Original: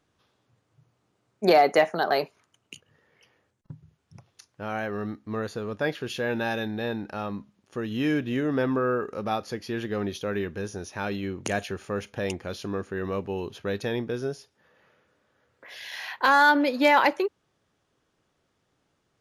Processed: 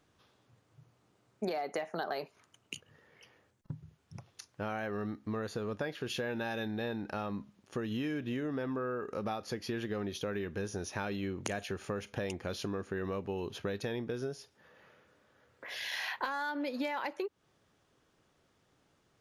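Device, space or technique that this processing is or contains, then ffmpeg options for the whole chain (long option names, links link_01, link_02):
serial compression, leveller first: -af "acompressor=threshold=-23dB:ratio=2.5,acompressor=threshold=-35dB:ratio=6,volume=1.5dB"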